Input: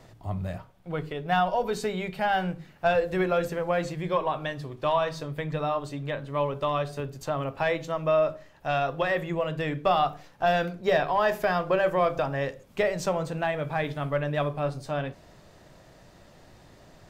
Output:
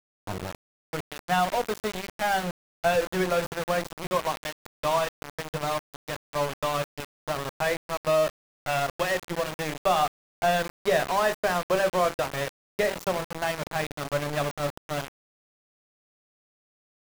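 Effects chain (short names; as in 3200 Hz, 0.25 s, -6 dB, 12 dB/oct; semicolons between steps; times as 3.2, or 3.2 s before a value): sample gate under -27 dBFS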